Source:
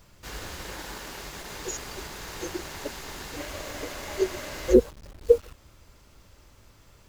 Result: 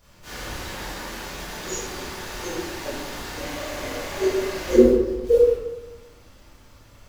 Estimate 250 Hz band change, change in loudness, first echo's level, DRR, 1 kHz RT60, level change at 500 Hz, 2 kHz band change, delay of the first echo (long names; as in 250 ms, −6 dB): +6.5 dB, +5.0 dB, no echo audible, −9.5 dB, 0.95 s, +5.5 dB, +5.5 dB, no echo audible